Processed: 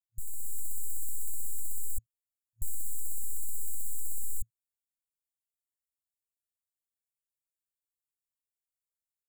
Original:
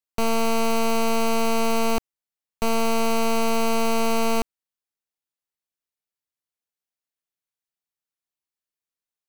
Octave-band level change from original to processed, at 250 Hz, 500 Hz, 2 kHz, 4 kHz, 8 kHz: below −40 dB, below −40 dB, below −40 dB, below −40 dB, −5.0 dB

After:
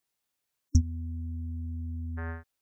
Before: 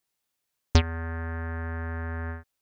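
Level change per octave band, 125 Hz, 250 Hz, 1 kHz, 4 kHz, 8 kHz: −2.0 dB, −2.0 dB, −14.0 dB, −16.0 dB, can't be measured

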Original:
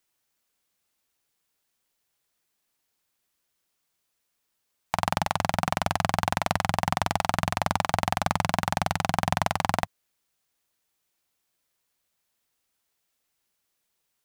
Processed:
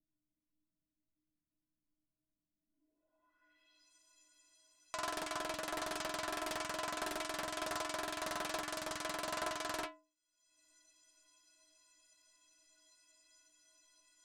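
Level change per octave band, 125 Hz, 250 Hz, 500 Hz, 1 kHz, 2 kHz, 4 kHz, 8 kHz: −28.5, −14.5, −10.0, −15.5, −11.0, −9.5, −7.5 decibels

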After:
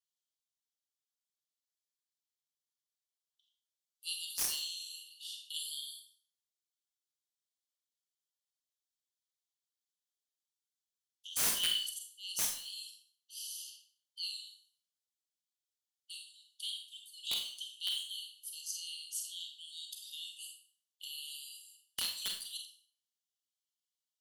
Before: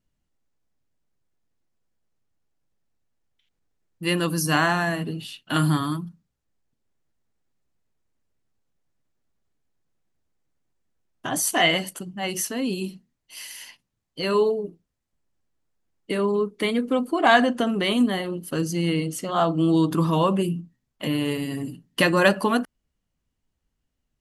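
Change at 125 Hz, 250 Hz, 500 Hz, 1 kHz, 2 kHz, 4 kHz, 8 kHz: −40.0 dB, below −40 dB, −38.5 dB, −31.5 dB, −24.5 dB, −6.5 dB, −5.5 dB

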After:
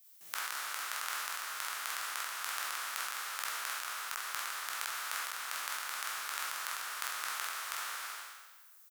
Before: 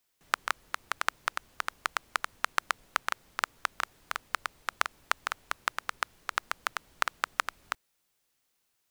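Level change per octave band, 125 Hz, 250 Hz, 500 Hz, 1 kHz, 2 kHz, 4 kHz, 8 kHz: can't be measured, below −10 dB, −9.0 dB, −6.5 dB, −4.5 dB, −0.5 dB, +5.0 dB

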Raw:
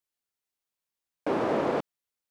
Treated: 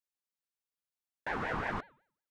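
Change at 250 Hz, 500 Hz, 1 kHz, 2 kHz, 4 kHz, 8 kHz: −12.0 dB, −14.5 dB, −5.5 dB, +2.5 dB, −5.0 dB, can't be measured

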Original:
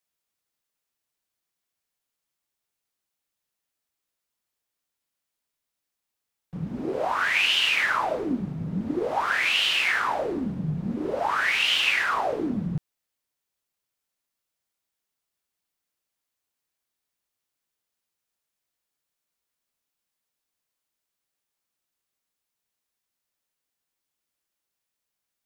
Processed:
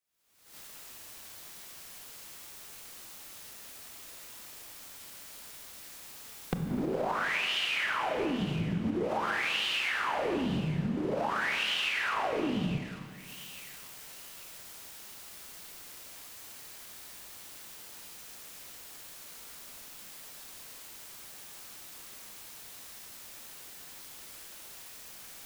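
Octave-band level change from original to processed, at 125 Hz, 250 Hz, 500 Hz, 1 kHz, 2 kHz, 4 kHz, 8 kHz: −2.0, −2.5, −3.5, −6.0, −7.5, −8.0, +1.0 decibels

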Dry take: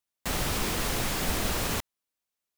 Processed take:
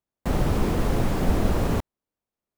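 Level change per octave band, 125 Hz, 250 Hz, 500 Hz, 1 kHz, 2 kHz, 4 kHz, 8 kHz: +10.0, +9.0, +7.0, +3.0, −3.0, −7.5, −9.5 decibels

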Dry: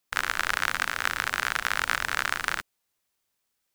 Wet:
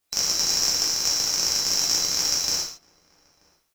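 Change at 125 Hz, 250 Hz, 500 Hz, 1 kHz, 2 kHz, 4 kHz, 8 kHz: +2.0, +5.0, +2.5, −9.0, −12.0, +12.5, +17.0 decibels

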